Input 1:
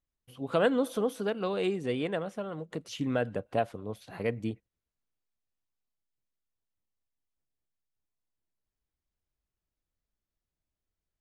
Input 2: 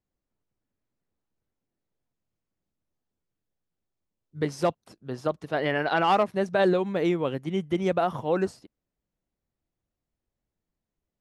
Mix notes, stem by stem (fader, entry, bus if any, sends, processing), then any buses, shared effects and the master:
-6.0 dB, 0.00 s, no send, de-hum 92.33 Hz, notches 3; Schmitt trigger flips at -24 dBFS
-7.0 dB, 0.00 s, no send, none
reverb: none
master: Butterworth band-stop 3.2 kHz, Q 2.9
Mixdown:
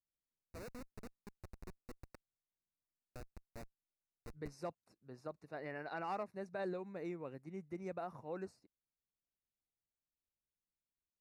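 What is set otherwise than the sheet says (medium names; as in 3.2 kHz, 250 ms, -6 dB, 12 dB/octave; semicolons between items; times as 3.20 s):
stem 1 -6.0 dB -> -12.5 dB; stem 2 -7.0 dB -> -19.0 dB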